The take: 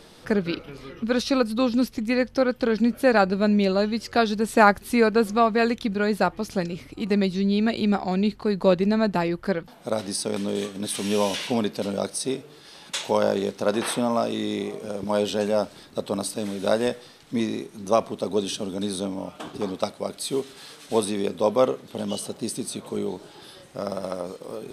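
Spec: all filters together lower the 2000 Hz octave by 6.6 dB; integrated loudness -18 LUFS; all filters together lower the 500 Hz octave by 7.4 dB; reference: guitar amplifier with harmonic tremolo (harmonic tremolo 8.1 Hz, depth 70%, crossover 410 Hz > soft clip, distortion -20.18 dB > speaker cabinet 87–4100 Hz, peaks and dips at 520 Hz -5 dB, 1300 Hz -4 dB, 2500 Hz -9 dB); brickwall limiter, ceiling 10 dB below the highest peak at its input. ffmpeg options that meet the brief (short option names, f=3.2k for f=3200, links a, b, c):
-filter_complex "[0:a]equalizer=f=500:t=o:g=-6,equalizer=f=2k:t=o:g=-5,alimiter=limit=-16.5dB:level=0:latency=1,acrossover=split=410[a][b];[a]aeval=exprs='val(0)*(1-0.7/2+0.7/2*cos(2*PI*8.1*n/s))':c=same[c];[b]aeval=exprs='val(0)*(1-0.7/2-0.7/2*cos(2*PI*8.1*n/s))':c=same[d];[c][d]amix=inputs=2:normalize=0,asoftclip=threshold=-20.5dB,highpass=87,equalizer=f=520:t=q:w=4:g=-5,equalizer=f=1.3k:t=q:w=4:g=-4,equalizer=f=2.5k:t=q:w=4:g=-9,lowpass=f=4.1k:w=0.5412,lowpass=f=4.1k:w=1.3066,volume=17dB"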